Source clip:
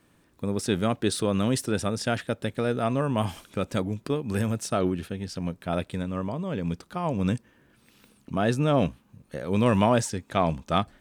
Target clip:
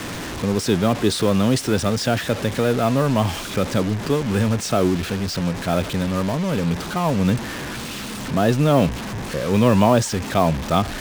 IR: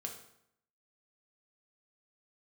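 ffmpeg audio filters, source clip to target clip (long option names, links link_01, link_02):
-filter_complex "[0:a]aeval=exprs='val(0)+0.5*0.0355*sgn(val(0))':channel_layout=same,lowpass=6800,acrossover=split=320|1200|2900[link_01][link_02][link_03][link_04];[link_03]alimiter=level_in=5.5dB:limit=-24dB:level=0:latency=1,volume=-5.5dB[link_05];[link_01][link_02][link_05][link_04]amix=inputs=4:normalize=0,acrusher=bits=5:mix=0:aa=0.5,volume=5dB"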